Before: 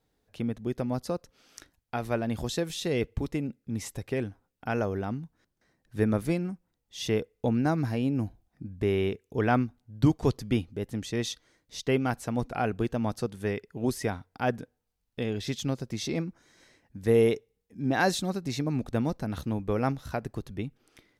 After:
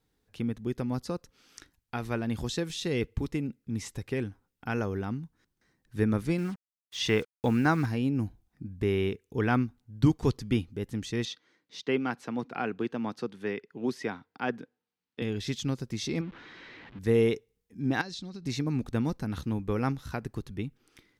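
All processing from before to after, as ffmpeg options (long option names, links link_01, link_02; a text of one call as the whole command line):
ffmpeg -i in.wav -filter_complex "[0:a]asettb=1/sr,asplit=3[link_01][link_02][link_03];[link_01]atrim=end=6.384[link_04];[link_02]atrim=start=6.38:end=7.86,asetpts=PTS-STARTPTS,afade=type=in:duration=0.004:curve=qsin,afade=type=out:start_time=1.476:duration=0.004:curve=qsin,equalizer=frequency=1600:width_type=o:width=2.7:gain=9,acrusher=bits=7:mix=0:aa=0.5[link_05];[link_03]atrim=start=7.856[link_06];[link_04][link_05]acrossfade=duration=0.004:curve1=hsin:curve2=qsin[link_07];[link_07][link_06]acrossfade=duration=0.004:curve1=qsin:curve2=hsin,asettb=1/sr,asplit=3[link_08][link_09][link_10];[link_08]atrim=end=11.254[link_11];[link_09]atrim=start=11.25:end=15.22,asetpts=PTS-STARTPTS,afade=type=in:duration=0.004:curve=qsin,afade=type=out:start_time=3.966:duration=0.004:curve=qsin,highpass=110,acrossover=split=170 5000:gain=0.178 1 0.141[link_12][link_13][link_14];[link_12][link_13][link_14]amix=inputs=3:normalize=0[link_15];[link_10]atrim=start=15.216[link_16];[link_11][link_15]acrossfade=duration=0.004:curve1=hsin:curve2=qsin[link_17];[link_17][link_16]acrossfade=duration=0.004:curve1=qsin:curve2=hsin,asettb=1/sr,asplit=3[link_18][link_19][link_20];[link_18]atrim=end=16.214[link_21];[link_19]atrim=start=16.21:end=16.99,asetpts=PTS-STARTPTS,afade=type=in:duration=0.004:curve=qsin,afade=type=out:start_time=0.776:duration=0.004:curve=qsin,aeval=exprs='val(0)+0.5*0.00891*sgn(val(0))':channel_layout=same,lowpass=frequency=3500:width=0.5412,lowpass=frequency=3500:width=1.3066,lowshelf=frequency=140:gain=-11[link_22];[link_20]atrim=start=16.986[link_23];[link_21][link_22]acrossfade=duration=0.004:curve1=hsin:curve2=qsin[link_24];[link_24][link_23]acrossfade=duration=0.004:curve1=qsin:curve2=hsin,asettb=1/sr,asplit=3[link_25][link_26][link_27];[link_25]atrim=end=18.014[link_28];[link_26]atrim=start=18.01:end=18.46,asetpts=PTS-STARTPTS,afade=type=in:duration=0.004:curve=qsin,afade=type=out:start_time=0.446:duration=0.004:curve=qsin,lowpass=frequency=4700:width_type=q:width=1.8,equalizer=frequency=1100:width=0.43:gain=-6.5,acompressor=threshold=-35dB:ratio=12:attack=3.2:release=140:knee=1:detection=peak[link_29];[link_27]atrim=start=18.456[link_30];[link_28][link_29]acrossfade=duration=0.004:curve1=hsin:curve2=qsin[link_31];[link_31][link_30]acrossfade=duration=0.004:curve1=qsin:curve2=hsin,acrossover=split=8500[link_32][link_33];[link_33]acompressor=threshold=-57dB:ratio=4:attack=1:release=60[link_34];[link_32][link_34]amix=inputs=2:normalize=0,equalizer=frequency=630:width=2.4:gain=-8.5" out.wav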